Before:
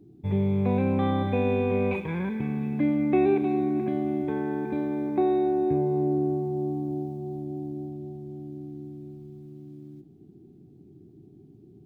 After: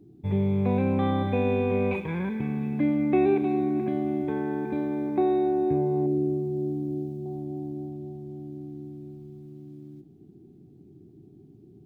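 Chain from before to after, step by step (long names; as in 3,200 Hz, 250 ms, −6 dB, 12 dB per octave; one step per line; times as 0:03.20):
0:06.06–0:07.26: flat-topped bell 1,100 Hz −10.5 dB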